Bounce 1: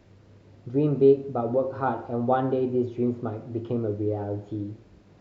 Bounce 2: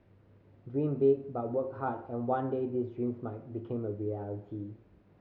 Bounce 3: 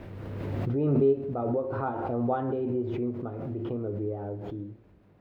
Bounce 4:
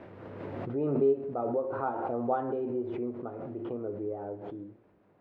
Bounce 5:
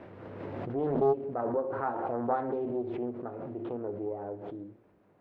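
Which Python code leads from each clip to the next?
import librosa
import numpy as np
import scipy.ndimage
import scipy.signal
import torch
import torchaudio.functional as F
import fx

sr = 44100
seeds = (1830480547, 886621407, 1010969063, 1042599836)

y1 = scipy.signal.sosfilt(scipy.signal.butter(2, 2600.0, 'lowpass', fs=sr, output='sos'), x)
y1 = y1 * librosa.db_to_amplitude(-7.5)
y2 = fx.pre_swell(y1, sr, db_per_s=23.0)
y2 = y2 * librosa.db_to_amplitude(1.5)
y3 = fx.bandpass_q(y2, sr, hz=800.0, q=0.51)
y4 = fx.doppler_dist(y3, sr, depth_ms=0.61)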